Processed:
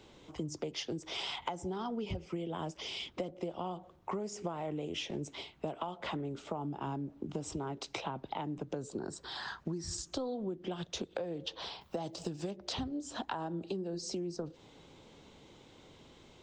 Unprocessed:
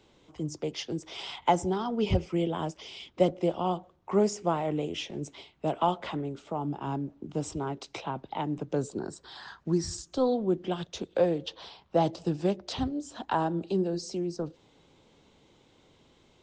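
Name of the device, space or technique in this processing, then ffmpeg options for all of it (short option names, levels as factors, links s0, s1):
serial compression, leveller first: -filter_complex "[0:a]acompressor=threshold=0.0316:ratio=2.5,acompressor=threshold=0.0112:ratio=6,asettb=1/sr,asplit=3[s0][s1][s2];[s0]atrim=end=11.814[s3];[s1]atrim=start=11.81:end=12.51,asetpts=PTS-STARTPTS,afade=t=in:d=0.004:c=qsin,afade=t=out:st=0.696:d=0.004:c=qsin,aemphasis=mode=production:type=50fm[s4];[s2]atrim=start=12.506[s5];[s3][s4]acrossfade=d=0.004:c1=hsin:c2=qsin[s6];[s6][s5]acrossfade=d=0.004:c1=qsin:c2=hsin,volume=1.58"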